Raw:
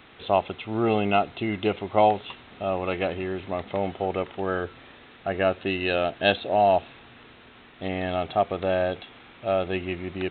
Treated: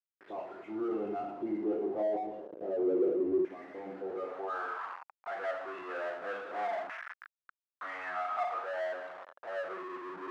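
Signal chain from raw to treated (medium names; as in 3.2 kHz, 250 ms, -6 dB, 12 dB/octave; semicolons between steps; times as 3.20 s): delay that grows with frequency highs late, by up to 117 ms; simulated room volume 120 m³, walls mixed, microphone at 0.83 m; spectral noise reduction 8 dB; in parallel at 0 dB: compression 6:1, threshold -33 dBFS, peak gain reduction 20 dB; on the sum: bass shelf 160 Hz +10 dB; word length cut 6-bit, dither none; LFO band-pass saw down 0.29 Hz 350–2000 Hz; power-law waveshaper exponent 0.5; band-pass sweep 350 Hz -> 1.3 kHz, 4.11–4.83 s; trim -7 dB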